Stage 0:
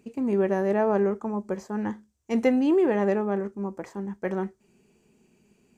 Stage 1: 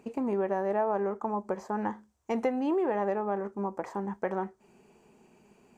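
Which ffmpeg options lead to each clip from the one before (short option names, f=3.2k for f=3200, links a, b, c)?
-af "equalizer=f=880:t=o:w=1.8:g=12.5,acompressor=threshold=-30dB:ratio=2.5,volume=-1dB"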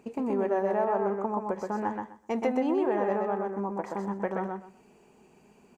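-af "aecho=1:1:126|252|378:0.668|0.127|0.0241"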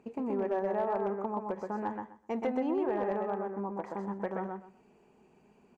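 -af "volume=19dB,asoftclip=hard,volume=-19dB,highshelf=f=5k:g=-11.5,volume=-4dB"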